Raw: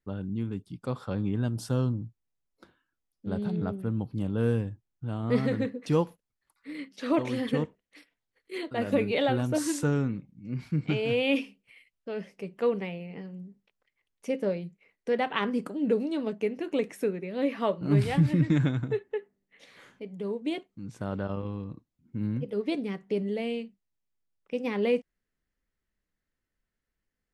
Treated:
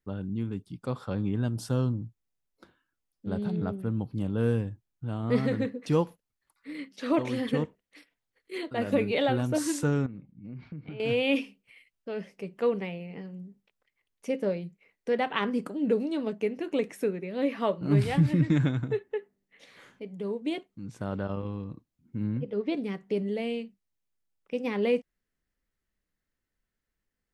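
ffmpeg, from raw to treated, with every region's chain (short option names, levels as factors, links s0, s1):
-filter_complex "[0:a]asettb=1/sr,asplit=3[s0][s1][s2];[s0]atrim=end=10.064[s3];[s1]atrim=start=10.06:end=11,asetpts=PTS-STARTPTS,afade=t=in:d=0.004:c=qsin,afade=t=out:st=0.936:d=0.004:c=qsin,lowpass=f=4400:w=0.5412,lowpass=f=4400:w=1.3066,highshelf=f=2500:g=-8.5,acompressor=threshold=0.0141:ratio=6:attack=3.2:release=140:knee=1:detection=peak[s4];[s2]atrim=start=10.996[s5];[s3][s4]acrossfade=d=0.004:c1=hsin:c2=qsin[s6];[s6][s5]acrossfade=d=0.004:c1=qsin:c2=hsin,asettb=1/sr,asplit=3[s7][s8][s9];[s7]atrim=end=22.234[s10];[s8]atrim=start=22.23:end=22.77,asetpts=PTS-STARTPTS,afade=t=in:d=0.004:c=qsin,afade=t=out:st=0.536:d=0.004:c=qsin,lowpass=7000,highshelf=f=5400:g=-10[s11];[s9]atrim=start=22.766[s12];[s10][s11]acrossfade=d=0.004:c1=hsin:c2=qsin[s13];[s13][s12]acrossfade=d=0.004:c1=qsin:c2=hsin"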